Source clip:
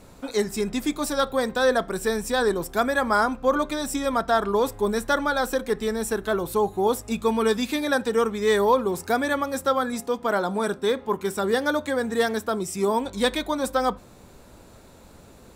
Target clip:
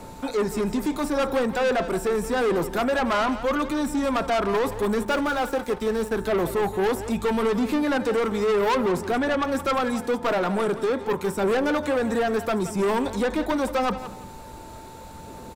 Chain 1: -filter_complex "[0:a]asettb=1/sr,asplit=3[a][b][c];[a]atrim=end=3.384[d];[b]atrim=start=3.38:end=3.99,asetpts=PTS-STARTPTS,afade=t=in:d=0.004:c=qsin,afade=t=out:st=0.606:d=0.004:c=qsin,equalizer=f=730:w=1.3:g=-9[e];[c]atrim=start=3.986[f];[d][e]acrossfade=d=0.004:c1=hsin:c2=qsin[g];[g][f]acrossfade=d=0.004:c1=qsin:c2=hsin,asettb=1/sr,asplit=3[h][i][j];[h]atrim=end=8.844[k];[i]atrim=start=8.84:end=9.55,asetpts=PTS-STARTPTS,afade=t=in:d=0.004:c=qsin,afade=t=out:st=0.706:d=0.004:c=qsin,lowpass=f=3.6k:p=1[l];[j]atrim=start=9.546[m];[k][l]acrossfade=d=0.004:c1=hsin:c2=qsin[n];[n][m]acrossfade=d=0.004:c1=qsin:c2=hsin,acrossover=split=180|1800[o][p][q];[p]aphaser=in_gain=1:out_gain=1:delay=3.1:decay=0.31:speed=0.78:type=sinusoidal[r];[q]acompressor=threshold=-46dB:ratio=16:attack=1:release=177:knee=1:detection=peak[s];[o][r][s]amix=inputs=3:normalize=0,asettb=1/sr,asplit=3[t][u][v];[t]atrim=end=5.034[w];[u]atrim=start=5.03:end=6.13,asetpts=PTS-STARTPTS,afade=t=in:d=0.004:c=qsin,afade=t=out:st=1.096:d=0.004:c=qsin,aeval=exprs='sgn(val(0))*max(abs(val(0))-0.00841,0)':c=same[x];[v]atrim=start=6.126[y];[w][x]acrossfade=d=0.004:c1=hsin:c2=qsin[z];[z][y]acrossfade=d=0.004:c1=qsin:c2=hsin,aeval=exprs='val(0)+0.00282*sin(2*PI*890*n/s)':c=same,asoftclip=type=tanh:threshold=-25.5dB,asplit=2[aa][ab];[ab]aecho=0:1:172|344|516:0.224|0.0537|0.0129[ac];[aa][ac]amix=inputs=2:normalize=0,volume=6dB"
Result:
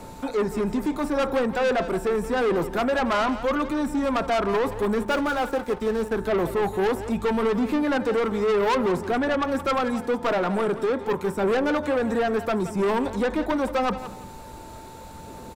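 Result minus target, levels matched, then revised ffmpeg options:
compressor: peak gain reduction +6.5 dB
-filter_complex "[0:a]asettb=1/sr,asplit=3[a][b][c];[a]atrim=end=3.384[d];[b]atrim=start=3.38:end=3.99,asetpts=PTS-STARTPTS,afade=t=in:d=0.004:c=qsin,afade=t=out:st=0.606:d=0.004:c=qsin,equalizer=f=730:w=1.3:g=-9[e];[c]atrim=start=3.986[f];[d][e]acrossfade=d=0.004:c1=hsin:c2=qsin[g];[g][f]acrossfade=d=0.004:c1=qsin:c2=hsin,asettb=1/sr,asplit=3[h][i][j];[h]atrim=end=8.844[k];[i]atrim=start=8.84:end=9.55,asetpts=PTS-STARTPTS,afade=t=in:d=0.004:c=qsin,afade=t=out:st=0.706:d=0.004:c=qsin,lowpass=f=3.6k:p=1[l];[j]atrim=start=9.546[m];[k][l]acrossfade=d=0.004:c1=hsin:c2=qsin[n];[n][m]acrossfade=d=0.004:c1=qsin:c2=hsin,acrossover=split=180|1800[o][p][q];[p]aphaser=in_gain=1:out_gain=1:delay=3.1:decay=0.31:speed=0.78:type=sinusoidal[r];[q]acompressor=threshold=-39dB:ratio=16:attack=1:release=177:knee=1:detection=peak[s];[o][r][s]amix=inputs=3:normalize=0,asettb=1/sr,asplit=3[t][u][v];[t]atrim=end=5.034[w];[u]atrim=start=5.03:end=6.13,asetpts=PTS-STARTPTS,afade=t=in:d=0.004:c=qsin,afade=t=out:st=1.096:d=0.004:c=qsin,aeval=exprs='sgn(val(0))*max(abs(val(0))-0.00841,0)':c=same[x];[v]atrim=start=6.126[y];[w][x]acrossfade=d=0.004:c1=hsin:c2=qsin[z];[z][y]acrossfade=d=0.004:c1=qsin:c2=hsin,aeval=exprs='val(0)+0.00282*sin(2*PI*890*n/s)':c=same,asoftclip=type=tanh:threshold=-25.5dB,asplit=2[aa][ab];[ab]aecho=0:1:172|344|516:0.224|0.0537|0.0129[ac];[aa][ac]amix=inputs=2:normalize=0,volume=6dB"

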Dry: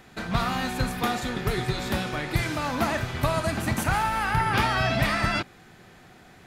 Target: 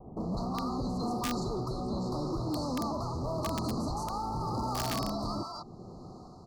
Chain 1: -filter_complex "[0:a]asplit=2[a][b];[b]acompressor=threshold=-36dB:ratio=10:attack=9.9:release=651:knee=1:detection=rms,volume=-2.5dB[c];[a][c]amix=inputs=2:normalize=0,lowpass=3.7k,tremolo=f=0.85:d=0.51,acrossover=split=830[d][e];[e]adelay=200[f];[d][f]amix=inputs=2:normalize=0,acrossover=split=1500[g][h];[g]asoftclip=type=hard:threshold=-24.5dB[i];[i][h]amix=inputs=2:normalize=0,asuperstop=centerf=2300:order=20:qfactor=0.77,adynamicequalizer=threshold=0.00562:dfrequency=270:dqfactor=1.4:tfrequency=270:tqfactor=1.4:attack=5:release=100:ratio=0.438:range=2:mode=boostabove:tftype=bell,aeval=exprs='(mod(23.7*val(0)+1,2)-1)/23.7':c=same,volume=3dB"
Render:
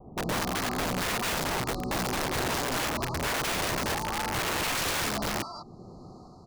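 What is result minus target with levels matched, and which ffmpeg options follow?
hard clip: distortion -8 dB
-filter_complex "[0:a]asplit=2[a][b];[b]acompressor=threshold=-36dB:ratio=10:attack=9.9:release=651:knee=1:detection=rms,volume=-2.5dB[c];[a][c]amix=inputs=2:normalize=0,lowpass=3.7k,tremolo=f=0.85:d=0.51,acrossover=split=830[d][e];[e]adelay=200[f];[d][f]amix=inputs=2:normalize=0,acrossover=split=1500[g][h];[g]asoftclip=type=hard:threshold=-36dB[i];[i][h]amix=inputs=2:normalize=0,asuperstop=centerf=2300:order=20:qfactor=0.77,adynamicequalizer=threshold=0.00562:dfrequency=270:dqfactor=1.4:tfrequency=270:tqfactor=1.4:attack=5:release=100:ratio=0.438:range=2:mode=boostabove:tftype=bell,aeval=exprs='(mod(23.7*val(0)+1,2)-1)/23.7':c=same,volume=3dB"

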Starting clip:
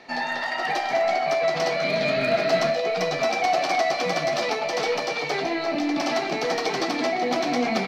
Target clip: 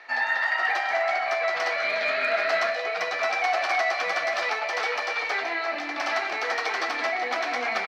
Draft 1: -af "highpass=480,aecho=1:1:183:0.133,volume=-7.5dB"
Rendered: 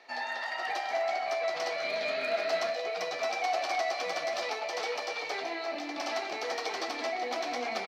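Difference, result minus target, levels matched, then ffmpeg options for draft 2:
2000 Hz band -4.0 dB
-af "highpass=480,equalizer=f=1.6k:t=o:w=1.6:g=13.5,aecho=1:1:183:0.133,volume=-7.5dB"

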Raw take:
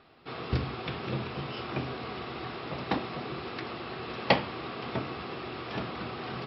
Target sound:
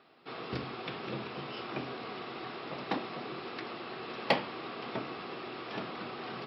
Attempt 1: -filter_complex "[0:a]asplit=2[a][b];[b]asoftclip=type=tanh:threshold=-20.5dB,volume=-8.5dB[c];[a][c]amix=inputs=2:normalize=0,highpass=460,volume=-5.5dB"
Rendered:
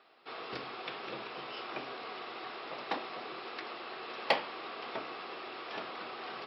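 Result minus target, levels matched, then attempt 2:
250 Hz band -6.5 dB
-filter_complex "[0:a]asplit=2[a][b];[b]asoftclip=type=tanh:threshold=-20.5dB,volume=-8.5dB[c];[a][c]amix=inputs=2:normalize=0,highpass=190,volume=-5.5dB"

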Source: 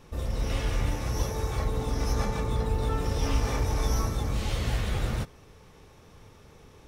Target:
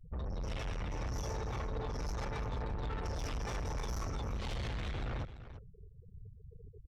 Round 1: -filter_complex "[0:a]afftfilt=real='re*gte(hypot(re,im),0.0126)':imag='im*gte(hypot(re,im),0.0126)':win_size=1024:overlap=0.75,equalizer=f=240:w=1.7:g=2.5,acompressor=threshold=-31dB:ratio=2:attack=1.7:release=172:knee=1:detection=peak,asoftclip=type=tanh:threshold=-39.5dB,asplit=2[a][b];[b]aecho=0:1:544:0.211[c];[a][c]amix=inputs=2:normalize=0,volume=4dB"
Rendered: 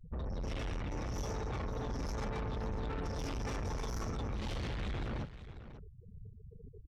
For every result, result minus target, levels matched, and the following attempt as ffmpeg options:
echo 0.203 s late; 250 Hz band +3.0 dB
-filter_complex "[0:a]afftfilt=real='re*gte(hypot(re,im),0.0126)':imag='im*gte(hypot(re,im),0.0126)':win_size=1024:overlap=0.75,equalizer=f=240:w=1.7:g=2.5,acompressor=threshold=-31dB:ratio=2:attack=1.7:release=172:knee=1:detection=peak,asoftclip=type=tanh:threshold=-39.5dB,asplit=2[a][b];[b]aecho=0:1:341:0.211[c];[a][c]amix=inputs=2:normalize=0,volume=4dB"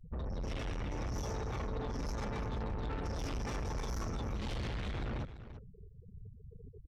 250 Hz band +3.0 dB
-filter_complex "[0:a]afftfilt=real='re*gte(hypot(re,im),0.0126)':imag='im*gte(hypot(re,im),0.0126)':win_size=1024:overlap=0.75,equalizer=f=240:w=1.7:g=-7.5,acompressor=threshold=-31dB:ratio=2:attack=1.7:release=172:knee=1:detection=peak,asoftclip=type=tanh:threshold=-39.5dB,asplit=2[a][b];[b]aecho=0:1:341:0.211[c];[a][c]amix=inputs=2:normalize=0,volume=4dB"

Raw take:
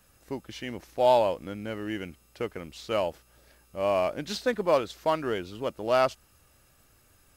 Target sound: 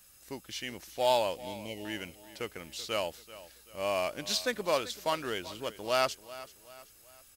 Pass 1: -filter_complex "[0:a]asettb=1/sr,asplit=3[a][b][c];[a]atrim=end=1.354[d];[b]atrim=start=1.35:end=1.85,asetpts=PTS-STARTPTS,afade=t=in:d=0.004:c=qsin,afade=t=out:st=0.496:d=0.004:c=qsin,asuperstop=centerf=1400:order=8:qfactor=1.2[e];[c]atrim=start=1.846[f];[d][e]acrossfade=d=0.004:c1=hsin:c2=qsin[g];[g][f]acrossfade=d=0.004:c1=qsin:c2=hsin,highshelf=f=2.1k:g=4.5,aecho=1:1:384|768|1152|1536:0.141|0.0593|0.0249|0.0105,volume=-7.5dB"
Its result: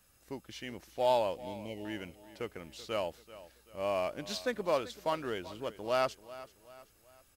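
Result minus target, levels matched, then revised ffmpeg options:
4000 Hz band -5.5 dB
-filter_complex "[0:a]asettb=1/sr,asplit=3[a][b][c];[a]atrim=end=1.354[d];[b]atrim=start=1.35:end=1.85,asetpts=PTS-STARTPTS,afade=t=in:d=0.004:c=qsin,afade=t=out:st=0.496:d=0.004:c=qsin,asuperstop=centerf=1400:order=8:qfactor=1.2[e];[c]atrim=start=1.846[f];[d][e]acrossfade=d=0.004:c1=hsin:c2=qsin[g];[g][f]acrossfade=d=0.004:c1=qsin:c2=hsin,highshelf=f=2.1k:g=15,aecho=1:1:384|768|1152|1536:0.141|0.0593|0.0249|0.0105,volume=-7.5dB"

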